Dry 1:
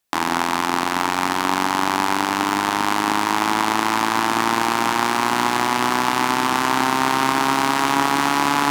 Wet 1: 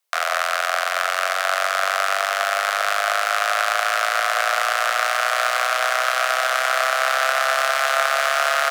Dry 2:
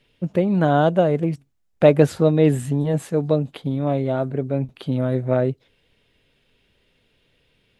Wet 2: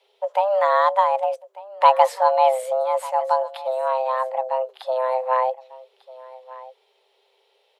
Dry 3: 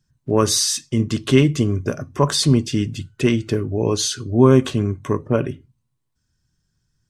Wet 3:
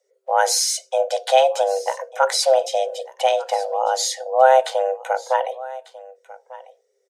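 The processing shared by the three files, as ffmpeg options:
-af "aecho=1:1:1196:0.112,afreqshift=390,volume=0.891"

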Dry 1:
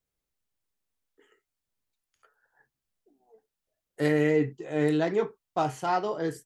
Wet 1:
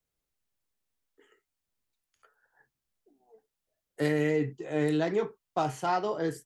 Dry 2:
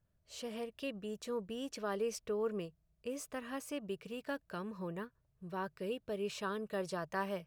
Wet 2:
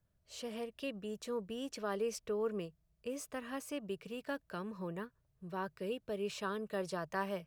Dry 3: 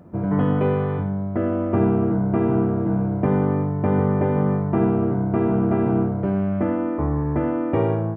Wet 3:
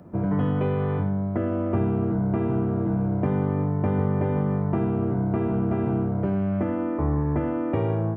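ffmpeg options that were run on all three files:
-filter_complex "[0:a]acrossover=split=130|3000[s0][s1][s2];[s1]acompressor=threshold=0.0708:ratio=6[s3];[s0][s3][s2]amix=inputs=3:normalize=0"

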